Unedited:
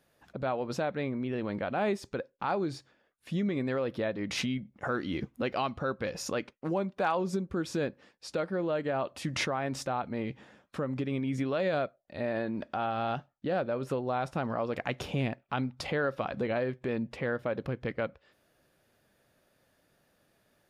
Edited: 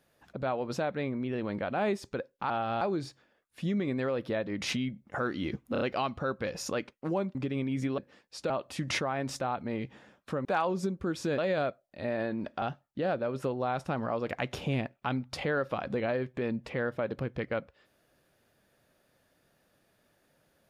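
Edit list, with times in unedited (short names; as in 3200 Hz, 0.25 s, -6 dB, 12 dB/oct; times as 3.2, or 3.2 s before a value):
5.41 stutter 0.03 s, 4 plays
6.95–7.88 swap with 10.91–11.54
8.4–8.96 cut
12.78–13.09 move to 2.5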